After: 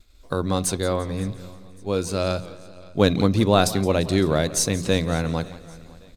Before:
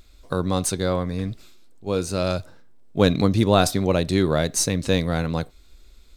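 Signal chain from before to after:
downward expander −46 dBFS
mains-hum notches 60/120/180 Hz
on a send: repeating echo 559 ms, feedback 39%, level −23 dB
on the sum: feedback echo with a swinging delay time 173 ms, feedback 53%, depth 110 cents, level −17 dB

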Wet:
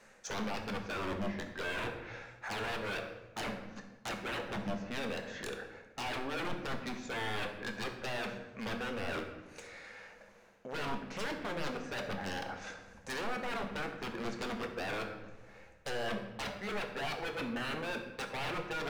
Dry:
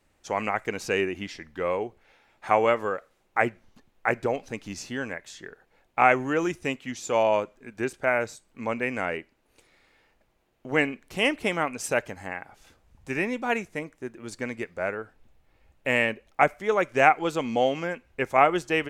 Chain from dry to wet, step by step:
mid-hump overdrive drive 16 dB, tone 4,400 Hz, clips at −2.5 dBFS
thirty-one-band graphic EQ 200 Hz +11 dB, 315 Hz −7 dB, 500 Hz +9 dB, 1,600 Hz +6 dB, 3,150 Hz −5 dB, 6,300 Hz +7 dB
reversed playback
downward compressor 10 to 1, threshold −26 dBFS, peak gain reduction 19 dB
reversed playback
treble cut that deepens with the level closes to 910 Hz, closed at −27.5 dBFS
wave folding −33.5 dBFS
on a send: convolution reverb RT60 1.1 s, pre-delay 9 ms, DRR 4 dB

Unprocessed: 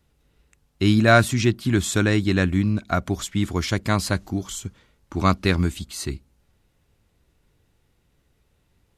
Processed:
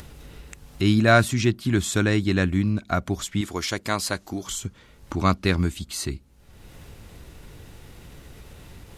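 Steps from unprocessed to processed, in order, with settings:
0:03.41–0:04.47: bass and treble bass −10 dB, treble +3 dB
upward compression, threshold −23 dBFS
level −1.5 dB

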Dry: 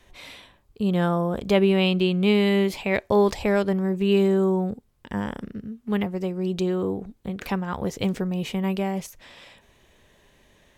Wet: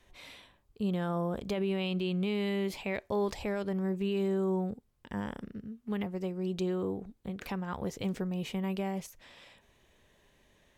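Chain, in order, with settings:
brickwall limiter −15.5 dBFS, peak gain reduction 9.5 dB
level −7.5 dB

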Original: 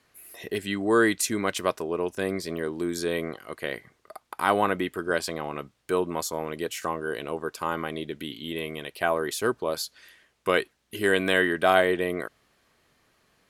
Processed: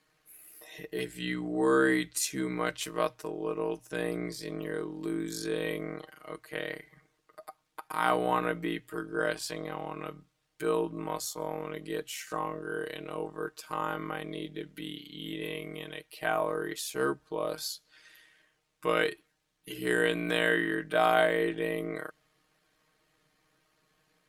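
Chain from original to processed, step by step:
time stretch by overlap-add 1.8×, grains 29 ms
mains-hum notches 60/120 Hz
level −4 dB

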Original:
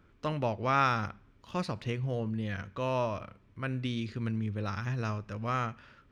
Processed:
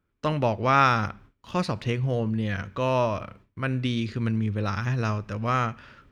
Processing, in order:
noise gate with hold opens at −48 dBFS
level +7 dB

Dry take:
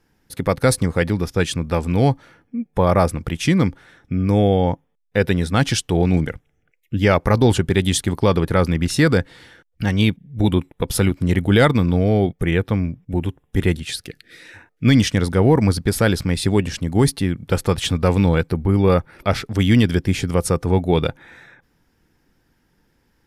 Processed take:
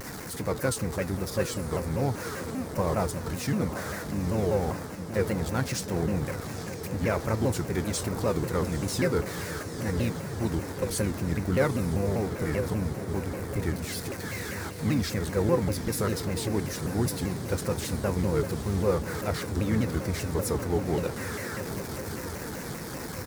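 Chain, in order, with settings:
converter with a step at zero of −18 dBFS
high-pass filter 64 Hz 12 dB per octave
parametric band 3,100 Hz −14.5 dB 0.45 octaves
tuned comb filter 480 Hz, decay 0.21 s, harmonics all, mix 70%
on a send: feedback delay with all-pass diffusion 877 ms, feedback 68%, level −10 dB
on the sum: pitch-shifted copies added −5 semitones −9 dB
pitch modulation by a square or saw wave saw down 5.1 Hz, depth 250 cents
level −4.5 dB

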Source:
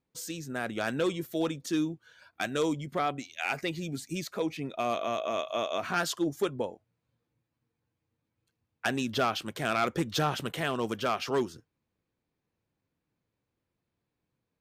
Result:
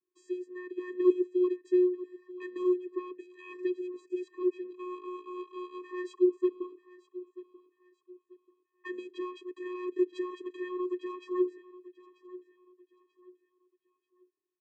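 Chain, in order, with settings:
0:00.79–0:01.37: low-shelf EQ 250 Hz +6.5 dB
channel vocoder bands 16, square 362 Hz
parametric band 5,300 Hz −12 dB 0.94 octaves
repeating echo 937 ms, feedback 33%, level −18 dB

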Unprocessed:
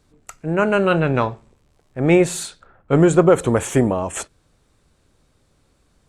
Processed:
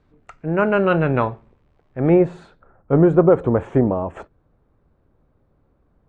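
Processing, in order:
low-pass filter 2,300 Hz 12 dB per octave, from 0:02.09 1,100 Hz

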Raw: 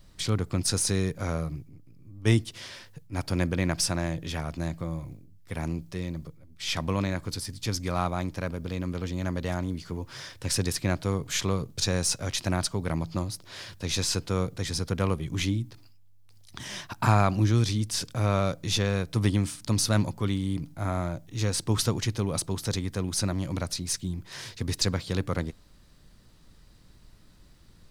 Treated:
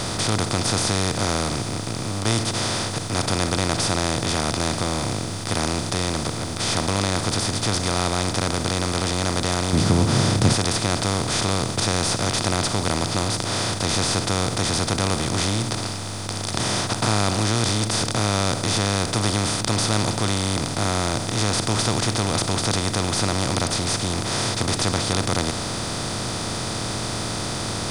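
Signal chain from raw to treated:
compressor on every frequency bin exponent 0.2
downsampling to 22,050 Hz
in parallel at −11 dB: bit reduction 6 bits
0:09.73–0:10.54: on the sum: parametric band 150 Hz +11 dB 2.6 octaves
level −6.5 dB

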